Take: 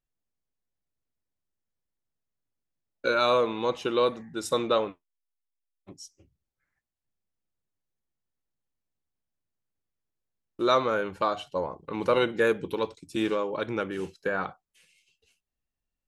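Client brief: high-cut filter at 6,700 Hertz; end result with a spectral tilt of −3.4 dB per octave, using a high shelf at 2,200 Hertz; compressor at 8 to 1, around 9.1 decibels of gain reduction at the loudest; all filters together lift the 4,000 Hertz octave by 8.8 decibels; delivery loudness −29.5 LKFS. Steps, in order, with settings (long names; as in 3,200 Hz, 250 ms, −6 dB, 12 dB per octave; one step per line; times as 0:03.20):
low-pass filter 6,700 Hz
high-shelf EQ 2,200 Hz +7.5 dB
parametric band 4,000 Hz +4 dB
downward compressor 8 to 1, threshold −26 dBFS
level +2.5 dB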